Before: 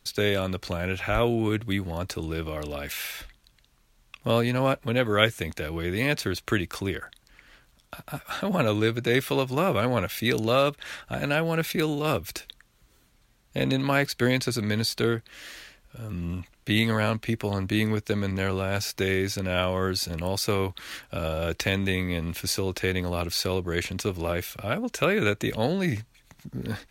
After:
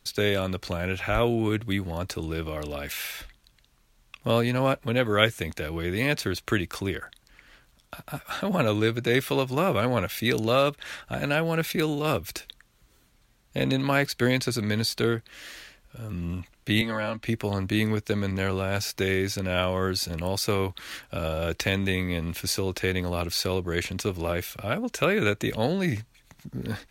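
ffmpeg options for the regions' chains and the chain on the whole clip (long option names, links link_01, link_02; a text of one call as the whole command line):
ffmpeg -i in.wav -filter_complex "[0:a]asettb=1/sr,asplit=3[link_01][link_02][link_03];[link_01]atrim=end=16.814[link_04];[link_02]atrim=start=16.81:end=17.24,asetpts=PTS-STARTPTS,afade=type=in:duration=0.004:curve=qsin,afade=type=out:start_time=0.426:duration=0.004:curve=qsin,lowpass=frequency=3600:poles=1,aecho=1:1:3.5:0.64,atrim=end_sample=18963,acrossover=split=120|300|960[link_05][link_06][link_07][link_08];[link_05]acompressor=threshold=-44dB:ratio=3[link_09];[link_06]acompressor=threshold=-41dB:ratio=3[link_10];[link_07]acompressor=threshold=-32dB:ratio=3[link_11];[link_08]acompressor=threshold=-32dB:ratio=3[link_12];[link_09][link_10][link_11][link_12]amix=inputs=4:normalize=0[link_13];[link_03]atrim=start=17.236[link_14];[link_04][link_13]acrossfade=duration=0.004:curve1=hsin:curve2=qsin[link_15];[link_15][link_14]acrossfade=duration=0.004:curve1=qsin:curve2=hsin" out.wav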